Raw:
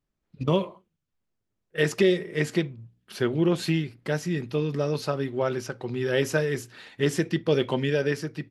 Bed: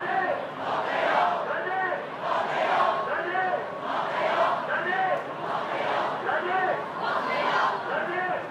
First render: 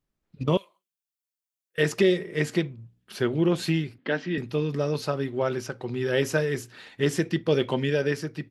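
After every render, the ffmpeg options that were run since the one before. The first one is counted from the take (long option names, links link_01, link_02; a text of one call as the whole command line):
ffmpeg -i in.wav -filter_complex "[0:a]asettb=1/sr,asplit=3[link_01][link_02][link_03];[link_01]atrim=end=0.574[link_04];[link_02]atrim=start=0.57:end=1.78,asetpts=PTS-STARTPTS,afade=type=in:duration=0.004:curve=qsin,afade=type=out:start_time=1.206:duration=0.004:curve=qsin,aderivative[link_05];[link_03]atrim=start=1.776[link_06];[link_04][link_05]acrossfade=duration=0.004:curve1=hsin:curve2=qsin[link_07];[link_07][link_06]acrossfade=duration=0.004:curve1=qsin:curve2=hsin,asettb=1/sr,asplit=3[link_08][link_09][link_10];[link_08]atrim=end=3.984[link_11];[link_09]atrim=start=3.98:end=4.38,asetpts=PTS-STARTPTS,afade=type=in:duration=0.004:curve=qsin,afade=type=out:start_time=0.396:duration=0.004:curve=qsin,highpass=frequency=190:width=0.5412,highpass=frequency=190:width=1.3066,equalizer=frequency=260:width_type=q:width=4:gain=8,equalizer=frequency=1700:width_type=q:width=4:gain=6,equalizer=frequency=3100:width_type=q:width=4:gain=6,lowpass=frequency=4100:width=0.5412,lowpass=frequency=4100:width=1.3066[link_12];[link_10]atrim=start=4.376[link_13];[link_11][link_12]acrossfade=duration=0.004:curve1=hsin:curve2=qsin[link_14];[link_14][link_13]acrossfade=duration=0.004:curve1=qsin:curve2=hsin" out.wav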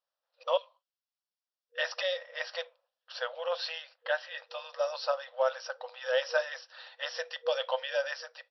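ffmpeg -i in.wav -af "afftfilt=real='re*between(b*sr/4096,480,5800)':imag='im*between(b*sr/4096,480,5800)':win_size=4096:overlap=0.75,equalizer=frequency=2200:width=4.8:gain=-14" out.wav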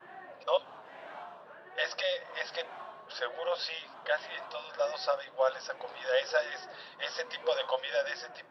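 ffmpeg -i in.wav -i bed.wav -filter_complex "[1:a]volume=-22.5dB[link_01];[0:a][link_01]amix=inputs=2:normalize=0" out.wav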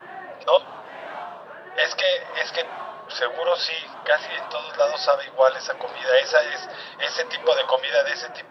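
ffmpeg -i in.wav -af "volume=11dB" out.wav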